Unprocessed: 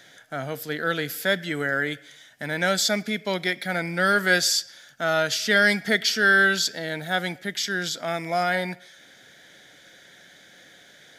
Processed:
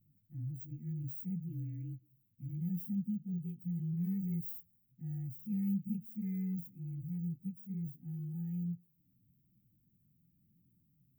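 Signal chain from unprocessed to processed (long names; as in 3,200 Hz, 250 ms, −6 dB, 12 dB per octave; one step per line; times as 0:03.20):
partials spread apart or drawn together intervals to 115%
inverse Chebyshev band-stop filter 510–9,700 Hz, stop band 50 dB
level −1.5 dB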